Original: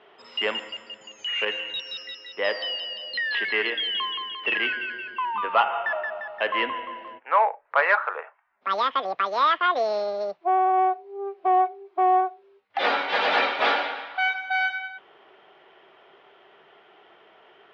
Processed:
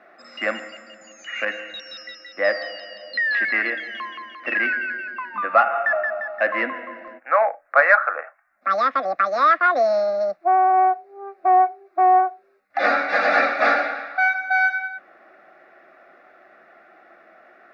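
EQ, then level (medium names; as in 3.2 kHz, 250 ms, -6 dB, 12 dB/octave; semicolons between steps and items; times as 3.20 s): static phaser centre 630 Hz, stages 8; +7.0 dB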